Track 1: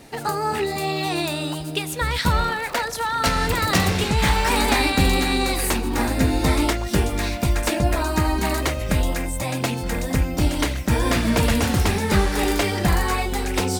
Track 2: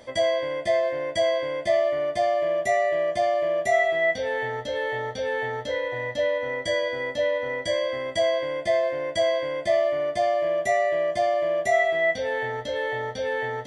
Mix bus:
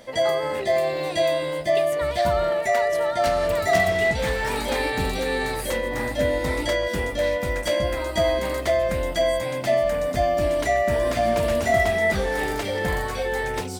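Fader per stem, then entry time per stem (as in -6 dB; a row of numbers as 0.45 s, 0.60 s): -9.0 dB, +1.0 dB; 0.00 s, 0.00 s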